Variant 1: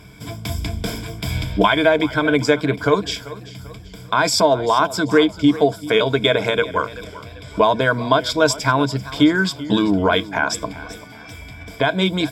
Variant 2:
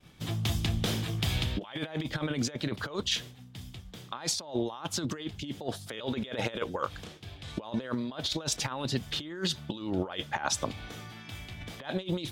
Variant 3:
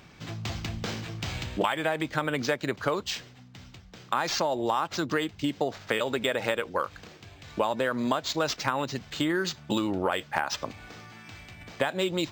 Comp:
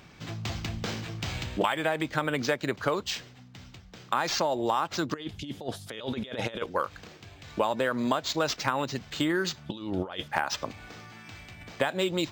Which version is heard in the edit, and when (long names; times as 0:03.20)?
3
0:05.14–0:06.66: punch in from 2
0:09.66–0:10.28: punch in from 2
not used: 1